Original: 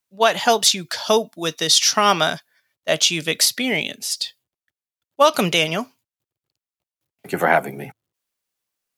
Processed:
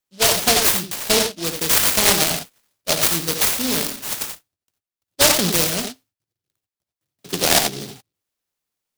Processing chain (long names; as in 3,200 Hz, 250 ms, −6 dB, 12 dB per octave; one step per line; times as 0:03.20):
convolution reverb, pre-delay 3 ms, DRR 4 dB
short delay modulated by noise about 4,100 Hz, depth 0.28 ms
level −1 dB